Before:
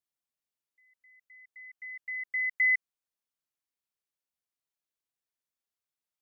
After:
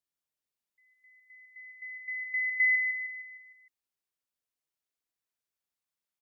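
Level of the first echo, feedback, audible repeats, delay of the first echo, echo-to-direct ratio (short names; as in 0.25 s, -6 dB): -5.0 dB, 50%, 5, 0.154 s, -4.0 dB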